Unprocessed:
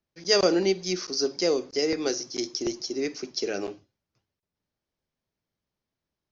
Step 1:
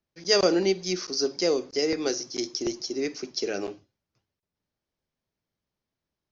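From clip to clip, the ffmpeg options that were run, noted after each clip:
ffmpeg -i in.wav -af anull out.wav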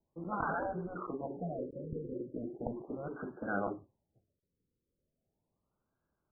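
ffmpeg -i in.wav -af "lowpass=frequency=2400:width_type=q:width=4.9,afftfilt=real='re*lt(hypot(re,im),0.126)':imag='im*lt(hypot(re,im),0.126)':win_size=1024:overlap=0.75,afftfilt=real='re*lt(b*sr/1024,540*pow(1700/540,0.5+0.5*sin(2*PI*0.37*pts/sr)))':imag='im*lt(b*sr/1024,540*pow(1700/540,0.5+0.5*sin(2*PI*0.37*pts/sr)))':win_size=1024:overlap=0.75,volume=3.5dB" out.wav

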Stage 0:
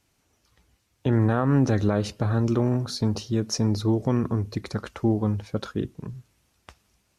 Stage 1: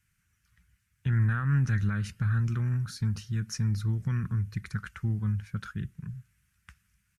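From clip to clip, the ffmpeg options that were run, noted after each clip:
ffmpeg -i in.wav -af "firequalizer=gain_entry='entry(180,0);entry(260,-18);entry(630,-27);entry(1500,3);entry(3900,-11);entry(8700,-2)':delay=0.05:min_phase=1,volume=-1.5dB" out.wav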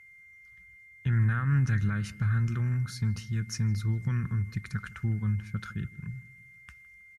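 ffmpeg -i in.wav -filter_complex "[0:a]asplit=2[link_01][link_02];[link_02]adelay=160,lowpass=frequency=1700:poles=1,volume=-18.5dB,asplit=2[link_03][link_04];[link_04]adelay=160,lowpass=frequency=1700:poles=1,volume=0.5,asplit=2[link_05][link_06];[link_06]adelay=160,lowpass=frequency=1700:poles=1,volume=0.5,asplit=2[link_07][link_08];[link_08]adelay=160,lowpass=frequency=1700:poles=1,volume=0.5[link_09];[link_01][link_03][link_05][link_07][link_09]amix=inputs=5:normalize=0,aeval=exprs='val(0)+0.00282*sin(2*PI*2100*n/s)':channel_layout=same" out.wav

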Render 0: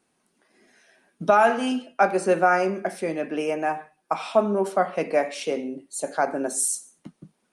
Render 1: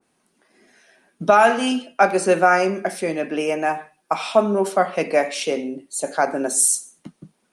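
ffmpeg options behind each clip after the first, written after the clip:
ffmpeg -i in.wav -af "adynamicequalizer=threshold=0.0178:dfrequency=2100:dqfactor=0.7:tfrequency=2100:tqfactor=0.7:attack=5:release=100:ratio=0.375:range=2.5:mode=boostabove:tftype=highshelf,volume=3.5dB" out.wav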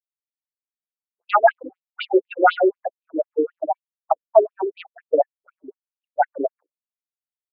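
ffmpeg -i in.wav -af "afftfilt=real='re*gte(hypot(re,im),0.355)':imag='im*gte(hypot(re,im),0.355)':win_size=1024:overlap=0.75,acontrast=82,afftfilt=real='re*between(b*sr/1024,370*pow(3700/370,0.5+0.5*sin(2*PI*4*pts/sr))/1.41,370*pow(3700/370,0.5+0.5*sin(2*PI*4*pts/sr))*1.41)':imag='im*between(b*sr/1024,370*pow(3700/370,0.5+0.5*sin(2*PI*4*pts/sr))/1.41,370*pow(3700/370,0.5+0.5*sin(2*PI*4*pts/sr))*1.41)':win_size=1024:overlap=0.75" out.wav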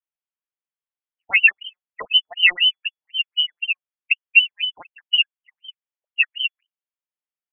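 ffmpeg -i in.wav -af "lowpass=frequency=2900:width_type=q:width=0.5098,lowpass=frequency=2900:width_type=q:width=0.6013,lowpass=frequency=2900:width_type=q:width=0.9,lowpass=frequency=2900:width_type=q:width=2.563,afreqshift=-3400" out.wav

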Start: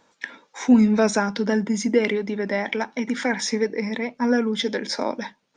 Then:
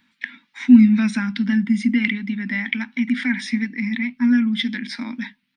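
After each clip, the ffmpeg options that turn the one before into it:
ffmpeg -i in.wav -af "firequalizer=gain_entry='entry(150,0);entry(240,9);entry(430,-28);entry(930,-10);entry(2000,8);entry(3900,3);entry(6700,-14);entry(9800,7)':delay=0.05:min_phase=1,volume=-2dB" out.wav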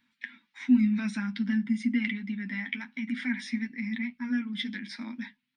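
ffmpeg -i in.wav -af "flanger=delay=7.8:depth=3.3:regen=-32:speed=0.55:shape=sinusoidal,volume=-6dB" out.wav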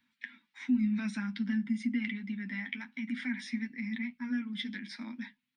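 ffmpeg -i in.wav -filter_complex "[0:a]acrossover=split=220[link_01][link_02];[link_02]acompressor=threshold=-28dB:ratio=6[link_03];[link_01][link_03]amix=inputs=2:normalize=0,volume=-3.5dB" out.wav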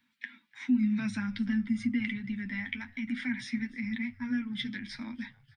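ffmpeg -i in.wav -filter_complex "[0:a]asplit=4[link_01][link_02][link_03][link_04];[link_02]adelay=295,afreqshift=-110,volume=-22.5dB[link_05];[link_03]adelay=590,afreqshift=-220,volume=-29.8dB[link_06];[link_04]adelay=885,afreqshift=-330,volume=-37.2dB[link_07];[link_01][link_05][link_06][link_07]amix=inputs=4:normalize=0,volume=2dB" out.wav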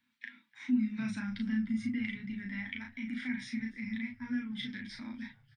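ffmpeg -i in.wav -filter_complex "[0:a]asplit=2[link_01][link_02];[link_02]adelay=36,volume=-3dB[link_03];[link_01][link_03]amix=inputs=2:normalize=0,volume=-5.5dB" out.wav

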